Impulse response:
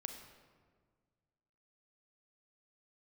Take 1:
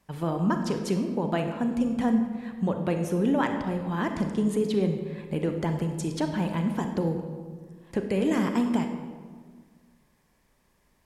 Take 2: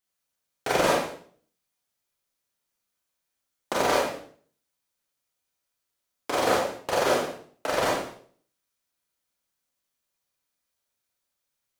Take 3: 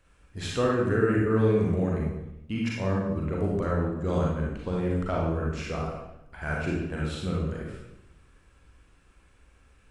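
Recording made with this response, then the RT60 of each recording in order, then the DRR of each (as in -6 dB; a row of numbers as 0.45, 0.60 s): 1; 1.7, 0.50, 0.85 s; 5.0, -4.0, -4.0 dB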